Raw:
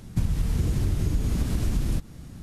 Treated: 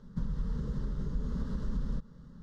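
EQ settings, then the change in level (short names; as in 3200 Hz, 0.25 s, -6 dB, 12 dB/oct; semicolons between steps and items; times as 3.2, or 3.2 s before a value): air absorption 210 m; fixed phaser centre 480 Hz, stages 8; -5.0 dB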